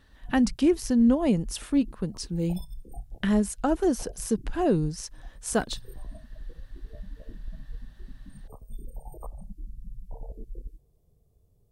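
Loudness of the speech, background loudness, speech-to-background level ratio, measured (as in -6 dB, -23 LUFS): -26.5 LUFS, -46.0 LUFS, 19.5 dB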